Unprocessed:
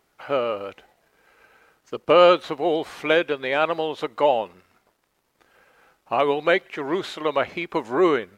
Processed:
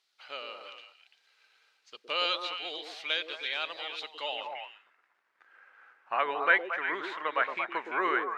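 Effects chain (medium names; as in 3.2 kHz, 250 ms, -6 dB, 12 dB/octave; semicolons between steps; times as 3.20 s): repeats whose band climbs or falls 114 ms, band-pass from 340 Hz, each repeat 1.4 oct, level -1 dB; band-pass sweep 4.1 kHz -> 1.6 kHz, 4.20–4.84 s; trim +2.5 dB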